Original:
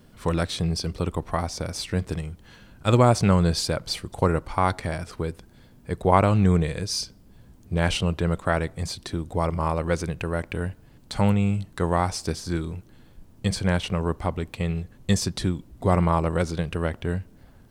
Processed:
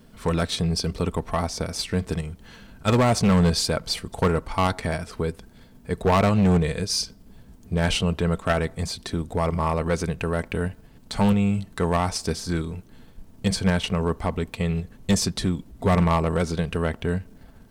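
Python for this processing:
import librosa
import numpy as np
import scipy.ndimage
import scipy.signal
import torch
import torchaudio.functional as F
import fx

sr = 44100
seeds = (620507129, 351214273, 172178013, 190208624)

p1 = x + 0.31 * np.pad(x, (int(4.5 * sr / 1000.0), 0))[:len(x)]
p2 = fx.level_steps(p1, sr, step_db=10)
p3 = p1 + (p2 * librosa.db_to_amplitude(0.0))
p4 = np.clip(10.0 ** (12.5 / 20.0) * p3, -1.0, 1.0) / 10.0 ** (12.5 / 20.0)
y = p4 * librosa.db_to_amplitude(-2.0)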